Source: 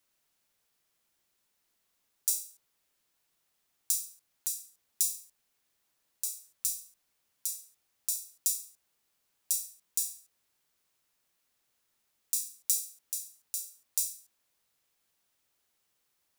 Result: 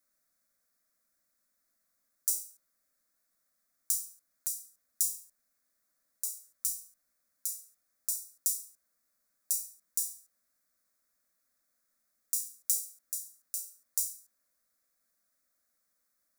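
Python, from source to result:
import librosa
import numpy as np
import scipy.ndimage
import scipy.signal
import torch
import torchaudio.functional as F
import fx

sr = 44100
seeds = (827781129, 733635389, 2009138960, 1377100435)

y = fx.fixed_phaser(x, sr, hz=590.0, stages=8)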